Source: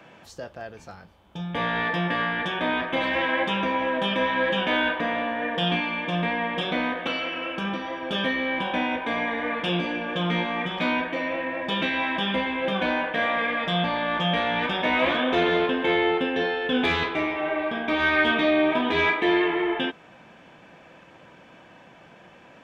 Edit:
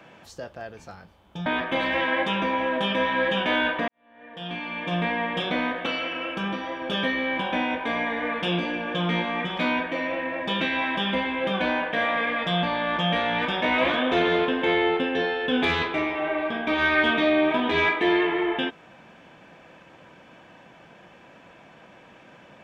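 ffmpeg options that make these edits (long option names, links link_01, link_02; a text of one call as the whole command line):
ffmpeg -i in.wav -filter_complex "[0:a]asplit=3[link_01][link_02][link_03];[link_01]atrim=end=1.462[link_04];[link_02]atrim=start=2.668:end=5.09,asetpts=PTS-STARTPTS,afade=type=out:start_time=2.418:duration=0.004:curve=hsin[link_05];[link_03]atrim=start=5.09,asetpts=PTS-STARTPTS,afade=type=in:duration=1.07:curve=qua[link_06];[link_05][link_06]concat=n=2:v=0:a=1[link_07];[link_04][link_07]acrossfade=duration=0.004:curve1=hsin:curve2=hsin" out.wav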